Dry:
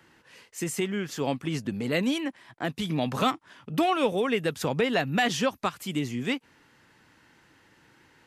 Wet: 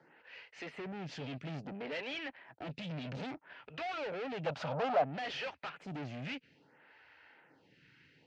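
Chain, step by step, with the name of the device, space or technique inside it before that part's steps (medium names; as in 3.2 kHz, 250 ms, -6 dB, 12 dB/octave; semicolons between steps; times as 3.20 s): vibe pedal into a guitar amplifier (lamp-driven phase shifter 0.6 Hz; valve stage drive 41 dB, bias 0.65; cabinet simulation 100–4200 Hz, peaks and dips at 100 Hz -8 dB, 220 Hz -8 dB, 340 Hz -7 dB, 1.1 kHz -9 dB, 2.5 kHz +3 dB, 3.6 kHz -5 dB); 4.46–5.04 s: high-order bell 860 Hz +13.5 dB; trim +5 dB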